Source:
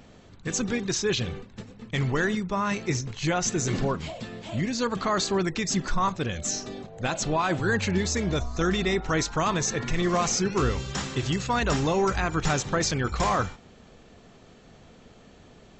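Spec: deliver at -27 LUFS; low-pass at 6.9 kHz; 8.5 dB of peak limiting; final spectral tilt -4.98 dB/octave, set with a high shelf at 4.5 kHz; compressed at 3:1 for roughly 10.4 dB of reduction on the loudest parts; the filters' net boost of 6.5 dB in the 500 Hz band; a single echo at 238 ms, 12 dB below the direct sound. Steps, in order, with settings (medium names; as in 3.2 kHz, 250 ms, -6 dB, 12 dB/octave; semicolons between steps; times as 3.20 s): low-pass 6.9 kHz; peaking EQ 500 Hz +8.5 dB; treble shelf 4.5 kHz -6 dB; compression 3:1, threshold -31 dBFS; peak limiter -27.5 dBFS; delay 238 ms -12 dB; trim +9.5 dB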